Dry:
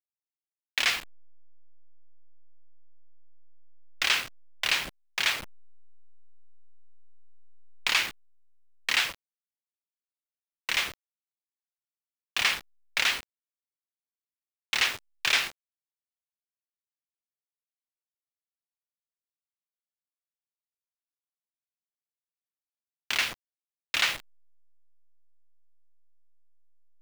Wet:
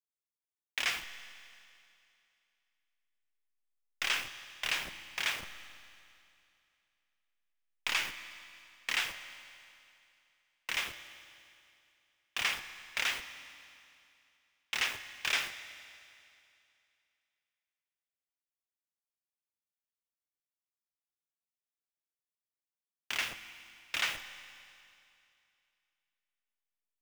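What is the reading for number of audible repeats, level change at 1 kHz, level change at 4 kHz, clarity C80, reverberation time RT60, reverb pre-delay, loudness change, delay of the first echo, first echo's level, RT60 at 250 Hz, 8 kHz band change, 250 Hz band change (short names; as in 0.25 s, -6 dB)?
none, -6.0 dB, -7.5 dB, 12.0 dB, 2.6 s, 15 ms, -7.5 dB, none, none, 2.6 s, -6.5 dB, -6.0 dB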